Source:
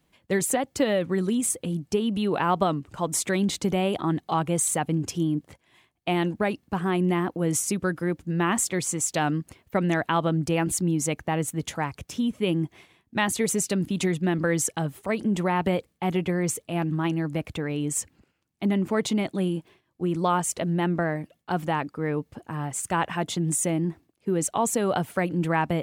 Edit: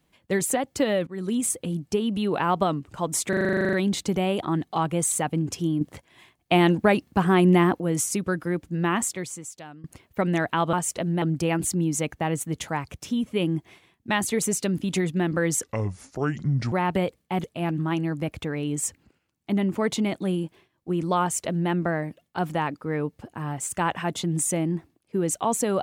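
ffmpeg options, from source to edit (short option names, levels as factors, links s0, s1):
-filter_complex "[0:a]asplit=21[s0][s1][s2][s3][s4][s5][s6][s7][s8][s9][s10][s11][s12][s13][s14][s15][s16][s17][s18][s19][s20];[s0]atrim=end=1.07,asetpts=PTS-STARTPTS,afade=t=out:st=1.066:d=0.004:c=hsin:silence=0.0841395[s21];[s1]atrim=start=1.07:end=3.332,asetpts=PTS-STARTPTS,afade=t=in:d=0.29:silence=0.0841395[s22];[s2]atrim=start=3.288:end=3.332[s23];[s3]atrim=start=3.288:end=3.332[s24];[s4]atrim=start=3.288:end=3.332[s25];[s5]atrim=start=3.288:end=3.332[s26];[s6]atrim=start=3.288:end=3.332[s27];[s7]atrim=start=3.288:end=3.332[s28];[s8]atrim=start=3.288:end=3.332[s29];[s9]atrim=start=3.288:end=3.332[s30];[s10]atrim=start=3.288:end=3.332[s31];[s11]atrim=start=3.288:end=3.332[s32];[s12]atrim=start=3.288:end=5.372[s33];[s13]atrim=start=5.368:end=7.362,asetpts=PTS-STARTPTS,volume=2[s34];[s14]atrim=start=7.358:end=9.4,asetpts=PTS-STARTPTS,afade=t=out:st=1.142:d=0.9:c=qua:silence=0.0944061[s35];[s15]atrim=start=9.4:end=10.292,asetpts=PTS-STARTPTS,afade=t=in:d=0.004:c=hsin:silence=0.0944061[s36];[s16]atrim=start=20.338:end=20.832[s37];[s17]atrim=start=10.288:end=14.704[s38];[s18]atrim=start=14.7:end=15.43,asetpts=PTS-STARTPTS,asetrate=29547,aresample=44100,atrim=end_sample=48049,asetpts=PTS-STARTPTS[s39];[s19]atrim=start=15.426:end=16.152[s40];[s20]atrim=start=16.568[s41];[s21][s22]concat=n=2:v=0:a=1[s42];[s42][s23]acrossfade=d=0.004:c1=hsin:c2=hsin[s43];[s43][s24]acrossfade=d=0.004:c1=hsin:c2=hsin[s44];[s44][s25]acrossfade=d=0.004:c1=hsin:c2=hsin[s45];[s45][s26]acrossfade=d=0.004:c1=hsin:c2=hsin[s46];[s46][s27]acrossfade=d=0.004:c1=hsin:c2=hsin[s47];[s47][s28]acrossfade=d=0.004:c1=hsin:c2=hsin[s48];[s48][s29]acrossfade=d=0.004:c1=hsin:c2=hsin[s49];[s49][s30]acrossfade=d=0.004:c1=hsin:c2=hsin[s50];[s50][s31]acrossfade=d=0.004:c1=hsin:c2=hsin[s51];[s51][s32]acrossfade=d=0.004:c1=hsin:c2=hsin[s52];[s52][s33]acrossfade=d=0.004:c1=hsin:c2=hsin[s53];[s53][s34]acrossfade=d=0.004:c1=hsin:c2=hsin[s54];[s35][s36]concat=n=2:v=0:a=1[s55];[s54][s55]acrossfade=d=0.004:c1=hsin:c2=hsin[s56];[s56][s37]acrossfade=d=0.004:c1=hsin:c2=hsin[s57];[s57][s38]acrossfade=d=0.004:c1=hsin:c2=hsin[s58];[s58][s39]acrossfade=d=0.004:c1=hsin:c2=hsin[s59];[s59][s40]acrossfade=d=0.004:c1=hsin:c2=hsin[s60];[s60][s41]acrossfade=d=0.004:c1=hsin:c2=hsin"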